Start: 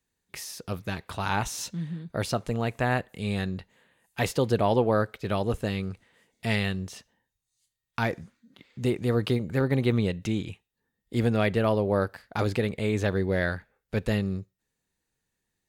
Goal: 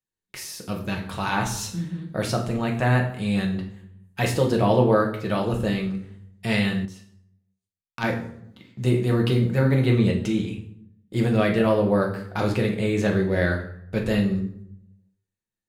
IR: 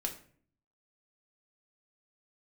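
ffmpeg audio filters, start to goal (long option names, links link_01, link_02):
-filter_complex "[0:a]agate=range=-15dB:threshold=-59dB:ratio=16:detection=peak[link_01];[1:a]atrim=start_sample=2205,asetrate=31311,aresample=44100[link_02];[link_01][link_02]afir=irnorm=-1:irlink=0,asettb=1/sr,asplit=3[link_03][link_04][link_05];[link_03]atrim=end=6.854[link_06];[link_04]atrim=start=6.85:end=8.04,asetpts=PTS-STARTPTS,afade=type=in:duration=0.004:curve=qsin,afade=type=out:start_time=1.186:duration=0.004:curve=qsin,aeval=exprs='0.355*(cos(1*acos(clip(val(0)/0.355,-1,1)))-cos(1*PI/2))+0.0794*(cos(3*acos(clip(val(0)/0.355,-1,1)))-cos(3*PI/2))':channel_layout=same[link_07];[link_05]atrim=start=8.036[link_08];[link_06][link_07]acrossfade=duration=0.004:curve1=hsin:curve2=qsin[link_09];[link_09][link_08]acrossfade=duration=0.004:curve1=qsin:curve2=hsin"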